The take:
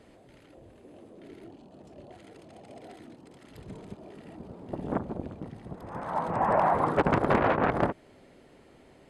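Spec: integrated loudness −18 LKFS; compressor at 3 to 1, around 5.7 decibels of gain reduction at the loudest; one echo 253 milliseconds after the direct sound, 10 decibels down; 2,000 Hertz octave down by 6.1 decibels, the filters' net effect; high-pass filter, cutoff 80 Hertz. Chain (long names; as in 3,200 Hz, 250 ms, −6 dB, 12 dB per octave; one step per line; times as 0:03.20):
high-pass filter 80 Hz
parametric band 2,000 Hz −8.5 dB
downward compressor 3 to 1, threshold −28 dBFS
single-tap delay 253 ms −10 dB
level +16 dB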